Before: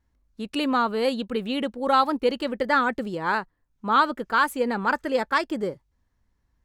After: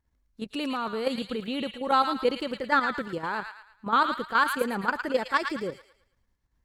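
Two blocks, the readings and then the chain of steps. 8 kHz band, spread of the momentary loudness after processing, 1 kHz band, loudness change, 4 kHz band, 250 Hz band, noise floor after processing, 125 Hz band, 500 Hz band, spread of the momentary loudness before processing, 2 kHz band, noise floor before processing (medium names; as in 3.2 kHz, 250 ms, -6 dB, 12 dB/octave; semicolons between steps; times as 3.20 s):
-2.0 dB, 10 LU, -3.0 dB, -3.0 dB, -2.0 dB, -4.5 dB, -73 dBFS, -3.5 dB, -4.0 dB, 8 LU, -2.0 dB, -72 dBFS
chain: level held to a coarse grid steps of 10 dB; feedback echo behind a high-pass 111 ms, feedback 37%, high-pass 1.5 kHz, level -4 dB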